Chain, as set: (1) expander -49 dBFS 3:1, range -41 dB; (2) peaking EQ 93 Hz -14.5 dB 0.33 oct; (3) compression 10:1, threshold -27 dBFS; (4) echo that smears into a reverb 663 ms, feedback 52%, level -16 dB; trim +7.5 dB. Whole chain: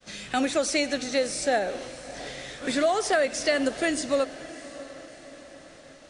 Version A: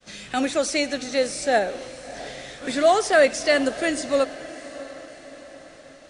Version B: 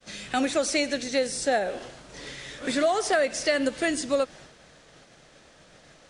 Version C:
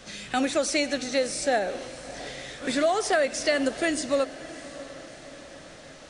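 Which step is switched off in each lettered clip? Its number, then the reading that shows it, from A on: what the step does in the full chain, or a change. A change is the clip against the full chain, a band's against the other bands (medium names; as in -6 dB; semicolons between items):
3, 8 kHz band -3.0 dB; 4, echo-to-direct -14.5 dB to none; 1, momentary loudness spread change +1 LU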